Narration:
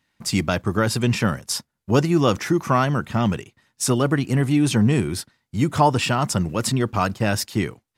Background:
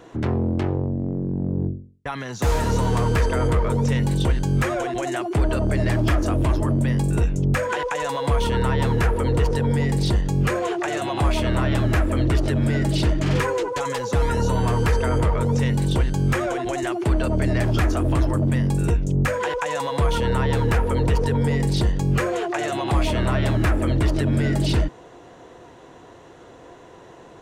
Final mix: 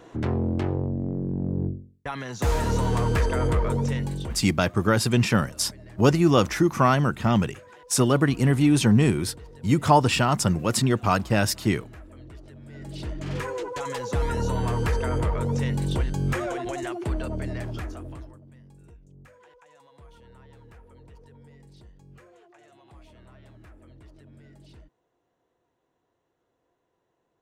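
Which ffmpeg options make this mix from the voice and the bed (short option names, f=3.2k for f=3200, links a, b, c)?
-filter_complex "[0:a]adelay=4100,volume=-0.5dB[a];[1:a]volume=17dB,afade=t=out:st=3.7:d=0.79:silence=0.0794328,afade=t=in:st=12.66:d=1.34:silence=0.1,afade=t=out:st=16.6:d=1.8:silence=0.0530884[b];[a][b]amix=inputs=2:normalize=0"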